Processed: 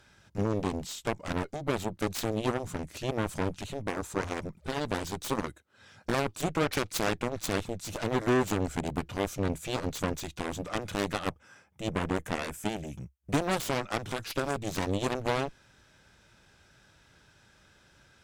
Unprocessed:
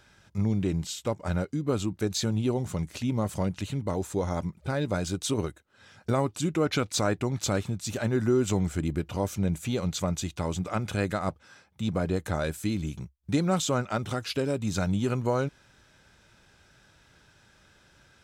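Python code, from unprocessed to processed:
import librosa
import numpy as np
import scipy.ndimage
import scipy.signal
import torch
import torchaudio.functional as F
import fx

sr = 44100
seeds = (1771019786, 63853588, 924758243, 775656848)

y = fx.peak_eq(x, sr, hz=4100.0, db=-13.5, octaves=0.34, at=(11.19, 13.42))
y = fx.cheby_harmonics(y, sr, harmonics=(7, 8), levels_db=(-10, -25), full_scale_db=-14.0)
y = F.gain(torch.from_numpy(y), -3.0).numpy()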